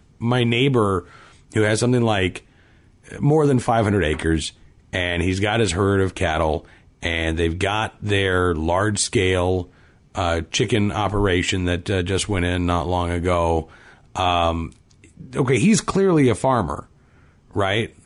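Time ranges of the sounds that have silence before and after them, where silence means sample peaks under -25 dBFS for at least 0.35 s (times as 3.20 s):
1.56–2.37 s
3.12–4.49 s
4.93–6.57 s
7.03–9.62 s
10.15–13.62 s
14.16–14.67 s
15.33–16.80 s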